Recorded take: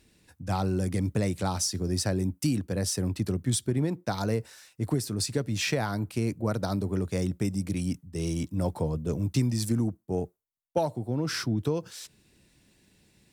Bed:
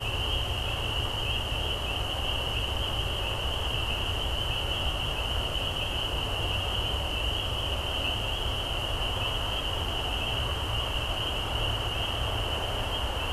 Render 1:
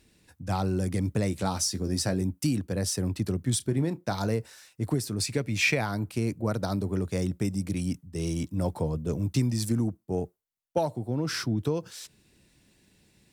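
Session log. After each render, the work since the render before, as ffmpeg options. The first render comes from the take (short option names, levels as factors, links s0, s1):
-filter_complex "[0:a]asettb=1/sr,asplit=3[s0][s1][s2];[s0]atrim=end=1.314[s3];[s1]atrim=start=1.31:end=2.21,asetpts=PTS-STARTPTS,afade=t=in:d=0.004:c=qsin,afade=t=out:st=0.896:d=0.004:c=qsin,asplit=2[s4][s5];[s5]adelay=15,volume=0.398[s6];[s4][s6]amix=inputs=2:normalize=0,atrim=end_sample=39690[s7];[s2]atrim=start=2.206[s8];[s3][s7]acrossfade=d=0.004:c1=hsin:c2=qsin[s9];[s9][s8]acrossfade=d=0.004:c1=qsin:c2=hsin,asettb=1/sr,asplit=3[s10][s11][s12];[s10]atrim=end=3.574[s13];[s11]atrim=start=3.57:end=4.28,asetpts=PTS-STARTPTS,afade=t=in:d=0.004:c=qsin,afade=t=out:st=0.706:d=0.004:c=qsin,asplit=2[s14][s15];[s15]adelay=30,volume=0.2[s16];[s14][s16]amix=inputs=2:normalize=0,atrim=end_sample=31311[s17];[s12]atrim=start=4.276[s18];[s13][s17]acrossfade=d=0.004:c1=hsin:c2=qsin[s19];[s19][s18]acrossfade=d=0.004:c1=qsin:c2=hsin,asettb=1/sr,asplit=3[s20][s21][s22];[s20]atrim=end=5.214[s23];[s21]atrim=start=5.21:end=5.81,asetpts=PTS-STARTPTS,afade=t=in:d=0.004:c=qsin,afade=t=out:st=0.596:d=0.004:c=qsin,equalizer=f=2300:w=4.5:g=12[s24];[s22]atrim=start=5.806[s25];[s23][s24]acrossfade=d=0.004:c1=hsin:c2=qsin[s26];[s26][s25]acrossfade=d=0.004:c1=qsin:c2=hsin"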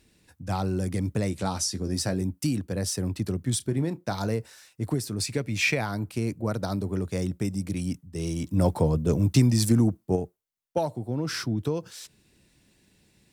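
-filter_complex "[0:a]asettb=1/sr,asplit=3[s0][s1][s2];[s0]atrim=end=1.304[s3];[s1]atrim=start=1.3:end=1.94,asetpts=PTS-STARTPTS,afade=t=in:d=0.004:c=qsin,afade=t=out:st=0.636:d=0.004:c=qsin,lowpass=12000[s4];[s2]atrim=start=1.936[s5];[s3][s4]acrossfade=d=0.004:c1=hsin:c2=qsin[s6];[s6][s5]acrossfade=d=0.004:c1=qsin:c2=hsin,asplit=3[s7][s8][s9];[s7]afade=t=out:st=8.46:d=0.02[s10];[s8]acontrast=57,afade=t=in:st=8.46:d=0.02,afade=t=out:st=10.15:d=0.02[s11];[s9]afade=t=in:st=10.15:d=0.02[s12];[s10][s11][s12]amix=inputs=3:normalize=0"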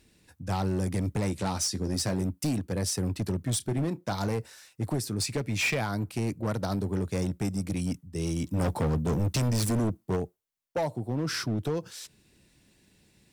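-af "volume=15,asoftclip=hard,volume=0.0668"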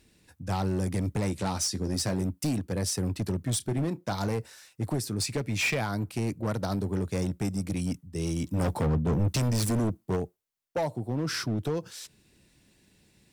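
-filter_complex "[0:a]asettb=1/sr,asplit=3[s0][s1][s2];[s0]atrim=end=8.864[s3];[s1]atrim=start=8.86:end=9.28,asetpts=PTS-STARTPTS,afade=t=in:d=0.004:c=qsin,afade=t=out:st=0.416:d=0.004:c=qsin,bass=f=250:g=2,treble=f=4000:g=-10[s4];[s2]atrim=start=9.276[s5];[s3][s4]acrossfade=d=0.004:c1=hsin:c2=qsin[s6];[s6][s5]acrossfade=d=0.004:c1=qsin:c2=hsin"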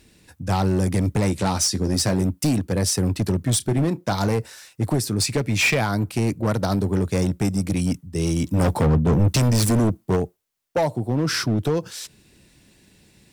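-af "volume=2.51"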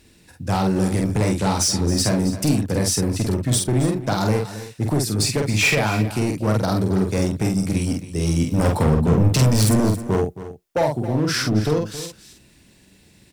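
-filter_complex "[0:a]asplit=2[s0][s1];[s1]adelay=47,volume=0.668[s2];[s0][s2]amix=inputs=2:normalize=0,aecho=1:1:271:0.2"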